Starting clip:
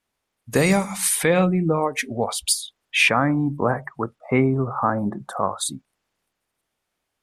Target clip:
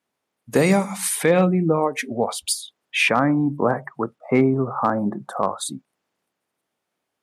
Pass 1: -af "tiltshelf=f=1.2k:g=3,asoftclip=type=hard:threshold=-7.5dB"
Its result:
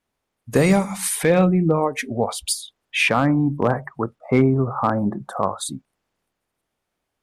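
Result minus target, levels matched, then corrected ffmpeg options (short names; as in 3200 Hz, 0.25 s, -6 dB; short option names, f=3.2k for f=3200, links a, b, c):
125 Hz band +3.0 dB
-af "highpass=160,tiltshelf=f=1.2k:g=3,asoftclip=type=hard:threshold=-7.5dB"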